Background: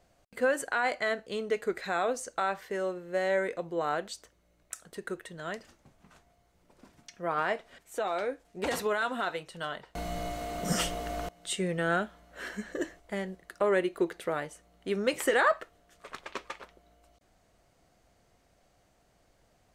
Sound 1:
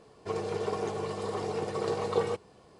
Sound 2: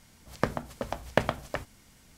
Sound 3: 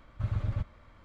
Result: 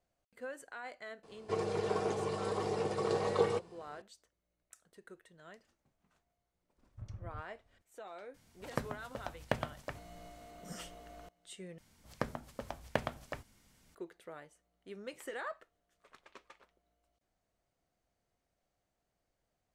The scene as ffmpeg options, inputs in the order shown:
-filter_complex "[2:a]asplit=2[s0][s1];[0:a]volume=0.141[s2];[3:a]adynamicsmooth=sensitivity=4:basefreq=660[s3];[s0]equalizer=f=120:w=1.5:g=3[s4];[s2]asplit=2[s5][s6];[s5]atrim=end=11.784[s7];[s1]atrim=end=2.17,asetpts=PTS-STARTPTS,volume=0.355[s8];[s6]atrim=start=13.946[s9];[1:a]atrim=end=2.79,asetpts=PTS-STARTPTS,volume=0.794,afade=t=in:d=0.004:c=hsin,afade=t=out:st=2.786:d=0.004:c=hsin,adelay=1230[s10];[s3]atrim=end=1.04,asetpts=PTS-STARTPTS,volume=0.168,afade=t=in:d=0.004:c=hsin,afade=t=out:st=1.036:d=0.004:c=hsin,adelay=6780[s11];[s4]atrim=end=2.17,asetpts=PTS-STARTPTS,volume=0.335,afade=t=in:d=0.004:c=hsin,afade=t=out:st=2.166:d=0.004:c=hsin,adelay=367794S[s12];[s7][s8]acrossfade=d=0.004:c1=hsin:c2=hsin[s13];[s13][s9]acrossfade=d=0.004:c1=hsin:c2=hsin[s14];[s14][s10][s11][s12]amix=inputs=4:normalize=0"

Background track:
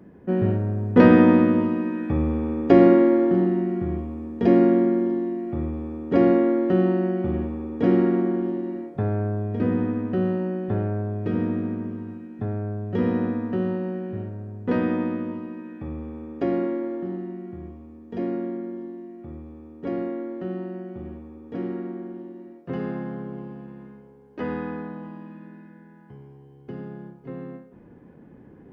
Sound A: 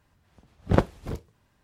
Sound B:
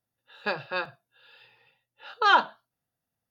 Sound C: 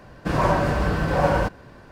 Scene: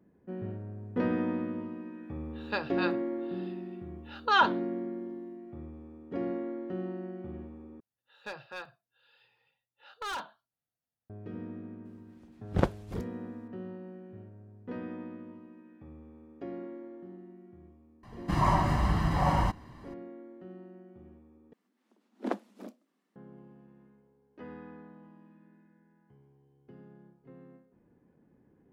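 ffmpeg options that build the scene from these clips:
-filter_complex "[2:a]asplit=2[s0][s1];[1:a]asplit=2[s2][s3];[0:a]volume=0.15[s4];[s1]asoftclip=type=hard:threshold=0.0708[s5];[3:a]aecho=1:1:1:0.73[s6];[s3]afreqshift=160[s7];[s4]asplit=3[s8][s9][s10];[s8]atrim=end=7.804[s11];[s5]atrim=end=3.3,asetpts=PTS-STARTPTS,volume=0.299[s12];[s9]atrim=start=11.096:end=21.534[s13];[s7]atrim=end=1.63,asetpts=PTS-STARTPTS,volume=0.237[s14];[s10]atrim=start=23.156[s15];[s0]atrim=end=3.3,asetpts=PTS-STARTPTS,volume=0.668,afade=t=in:d=0.004:c=hsin,afade=t=out:st=3.296:d=0.004:c=hsin,adelay=2060[s16];[s2]atrim=end=1.63,asetpts=PTS-STARTPTS,volume=0.531,afade=t=in:d=0.004:c=hsin,afade=t=out:st=1.626:d=0.004:c=hsin,adelay=11850[s17];[s6]atrim=end=1.91,asetpts=PTS-STARTPTS,volume=0.422,afade=t=in:d=0.004:c=hsin,afade=t=out:st=1.906:d=0.004:c=hsin,adelay=18030[s18];[s11][s12]acrossfade=d=0.004:c1=hsin:c2=hsin[s19];[s19][s13]acrossfade=d=0.004:c1=hsin:c2=hsin[s20];[s20][s14]acrossfade=d=0.004:c1=hsin:c2=hsin[s21];[s21][s15]acrossfade=d=0.004:c1=hsin:c2=hsin[s22];[s22][s16][s17][s18]amix=inputs=4:normalize=0"

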